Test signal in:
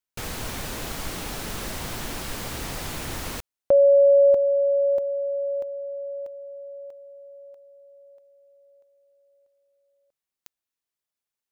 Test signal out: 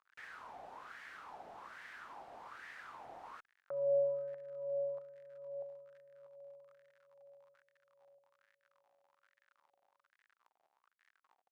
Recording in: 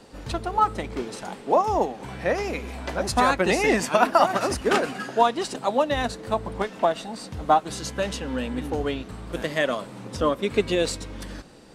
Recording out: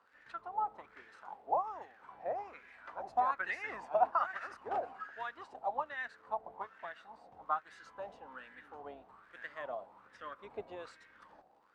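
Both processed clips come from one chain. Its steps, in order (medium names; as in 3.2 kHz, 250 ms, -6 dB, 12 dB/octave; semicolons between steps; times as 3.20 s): octave divider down 2 oct, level +1 dB; crackle 78 per s -34 dBFS; wah-wah 1.2 Hz 720–1800 Hz, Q 5.6; trim -5 dB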